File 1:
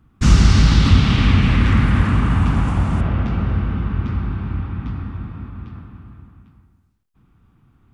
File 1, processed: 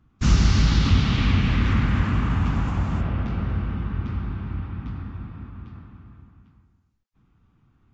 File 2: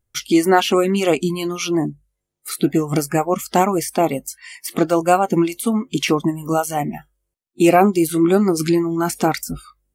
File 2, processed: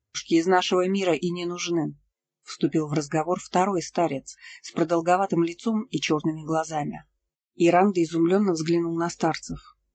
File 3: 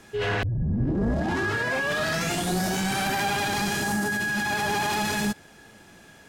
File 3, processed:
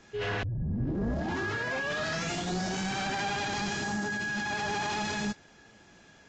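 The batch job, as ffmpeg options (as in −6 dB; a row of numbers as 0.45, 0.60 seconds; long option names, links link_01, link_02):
-af "volume=-6dB" -ar 16000 -c:a libvorbis -b:a 48k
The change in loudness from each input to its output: −6.0, −6.0, −6.0 LU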